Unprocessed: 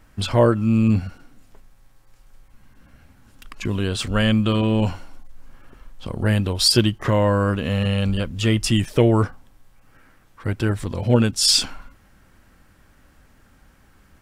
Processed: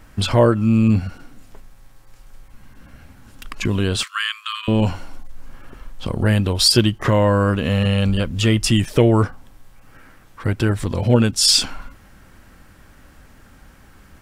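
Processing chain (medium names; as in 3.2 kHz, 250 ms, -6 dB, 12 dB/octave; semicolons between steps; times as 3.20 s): in parallel at +1.5 dB: compression, threshold -27 dBFS, peak gain reduction 16 dB; 4.03–4.68 s: on the sum: brick-wall FIR high-pass 1 kHz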